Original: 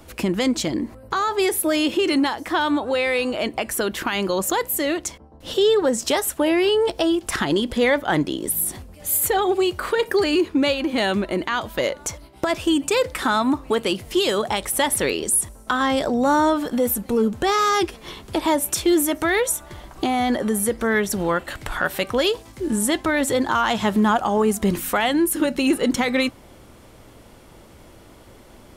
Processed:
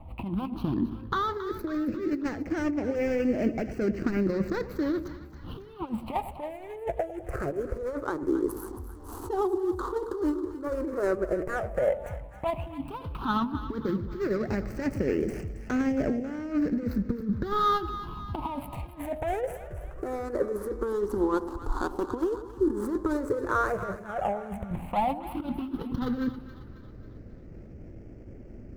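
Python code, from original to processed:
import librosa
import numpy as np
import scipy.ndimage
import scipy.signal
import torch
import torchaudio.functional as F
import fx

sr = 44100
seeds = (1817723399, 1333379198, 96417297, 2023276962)

y = scipy.signal.medfilt(x, 25)
y = fx.high_shelf(y, sr, hz=2200.0, db=-12.0)
y = fx.over_compress(y, sr, threshold_db=-24.0, ratio=-0.5)
y = fx.phaser_stages(y, sr, stages=6, low_hz=160.0, high_hz=1000.0, hz=0.08, feedback_pct=30)
y = fx.echo_split(y, sr, split_hz=890.0, low_ms=101, high_ms=272, feedback_pct=52, wet_db=-12.5)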